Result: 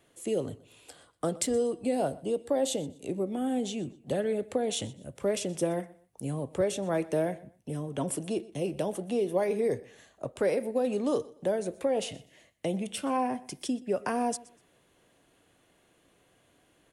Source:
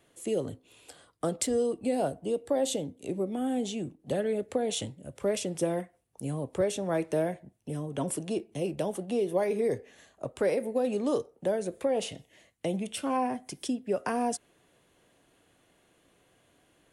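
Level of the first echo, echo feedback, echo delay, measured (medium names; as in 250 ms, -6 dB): -21.0 dB, 27%, 123 ms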